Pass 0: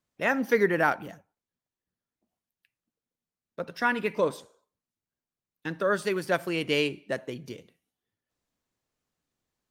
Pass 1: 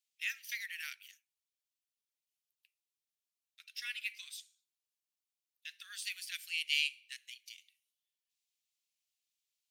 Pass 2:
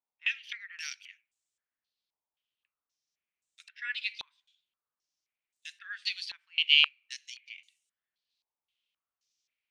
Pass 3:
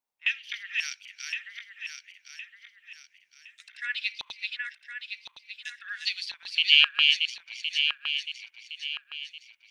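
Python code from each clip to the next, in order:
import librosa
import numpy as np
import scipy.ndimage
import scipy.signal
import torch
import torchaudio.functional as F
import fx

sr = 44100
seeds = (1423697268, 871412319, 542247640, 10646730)

y1 = scipy.signal.sosfilt(scipy.signal.butter(6, 2400.0, 'highpass', fs=sr, output='sos'), x)
y2 = fx.filter_held_lowpass(y1, sr, hz=3.8, low_hz=930.0, high_hz=7700.0)
y2 = y2 * librosa.db_to_amplitude(1.0)
y3 = fx.reverse_delay_fb(y2, sr, ms=532, feedback_pct=60, wet_db=-3.0)
y3 = y3 * librosa.db_to_amplitude(3.5)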